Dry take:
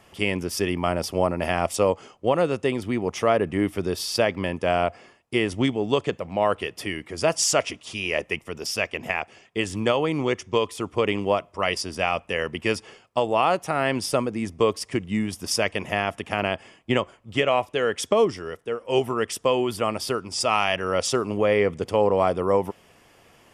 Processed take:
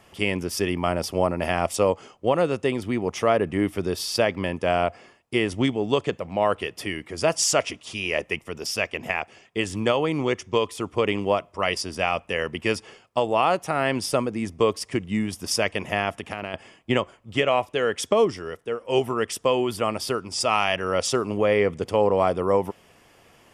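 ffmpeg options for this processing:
-filter_complex "[0:a]asettb=1/sr,asplit=3[s0][s1][s2];[s0]atrim=end=16.134[s3];[s1]atrim=start=16.13:end=16.54,asetpts=PTS-STARTPTS,afade=t=in:d=0.004:c=qsin,afade=t=out:st=0.406:d=0.004:c=qsin,acompressor=threshold=0.0501:ratio=6:attack=3.2:release=140:knee=1:detection=peak[s4];[s2]atrim=start=16.536[s5];[s3][s4]acrossfade=d=0.004:c1=hsin:c2=qsin[s6];[s6][s5]acrossfade=d=0.004:c1=qsin:c2=hsin"

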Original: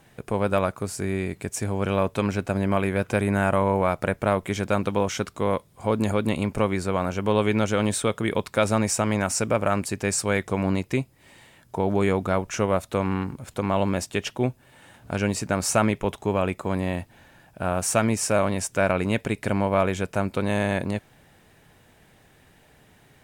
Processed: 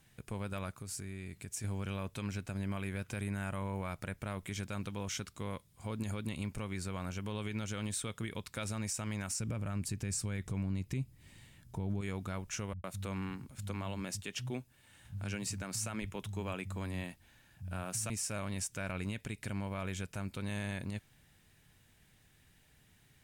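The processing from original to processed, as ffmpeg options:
-filter_complex "[0:a]asettb=1/sr,asplit=3[s0][s1][s2];[s0]atrim=end=0.814[s3];[s1]atrim=start=0.81:end=1.64,asetpts=PTS-STARTPTS,afade=t=in:d=0.004:c=qsin,afade=t=out:st=0.826:d=0.004:c=qsin,acompressor=threshold=0.0316:ratio=3:attack=3.2:release=140:knee=1:detection=peak[s4];[s2]atrim=start=1.636[s5];[s3][s4]acrossfade=d=0.004:c1=hsin:c2=qsin[s6];[s6][s5]acrossfade=d=0.004:c1=qsin:c2=hsin,asettb=1/sr,asplit=3[s7][s8][s9];[s7]atrim=end=9.404[s10];[s8]atrim=start=9.4:end=12.01,asetpts=PTS-STARTPTS,afade=t=in:d=0.004:c=qsin,afade=t=out:st=2.606:d=0.004:c=qsin,lowshelf=f=340:g=11[s11];[s9]atrim=start=12.006[s12];[s10][s11]acrossfade=d=0.004:c1=hsin:c2=qsin[s13];[s13][s12]acrossfade=d=0.004:c1=qsin:c2=hsin,asettb=1/sr,asplit=3[s14][s15][s16];[s14]atrim=end=12.734[s17];[s15]atrim=start=12.73:end=18.1,asetpts=PTS-STARTPTS,afade=t=in:d=0.004:c=qsin,afade=t=out:st=5.366:d=0.004:c=qsin,acrossover=split=150[s18][s19];[s19]adelay=110[s20];[s18][s20]amix=inputs=2:normalize=0,atrim=end_sample=236817[s21];[s16]atrim=start=18.096[s22];[s17][s21]acrossfade=d=0.004:c1=hsin:c2=qsin[s23];[s23][s22]acrossfade=d=0.004:c1=qsin:c2=hsin,equalizer=f=590:t=o:w=2.8:g=-13,alimiter=limit=0.0891:level=0:latency=1:release=99,volume=0.531"

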